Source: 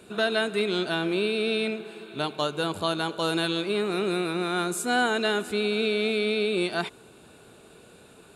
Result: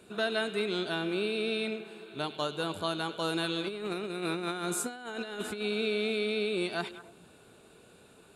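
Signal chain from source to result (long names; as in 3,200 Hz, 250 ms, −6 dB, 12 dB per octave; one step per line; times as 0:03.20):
echo through a band-pass that steps 100 ms, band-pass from 3,100 Hz, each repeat −1.4 octaves, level −10 dB
0:03.64–0:05.62: compressor whose output falls as the input rises −29 dBFS, ratio −0.5
level −5.5 dB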